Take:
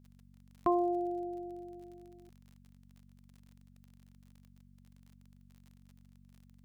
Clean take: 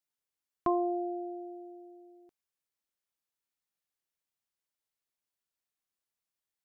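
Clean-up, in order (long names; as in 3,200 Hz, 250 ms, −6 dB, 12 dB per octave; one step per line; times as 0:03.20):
click removal
hum removal 47.3 Hz, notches 5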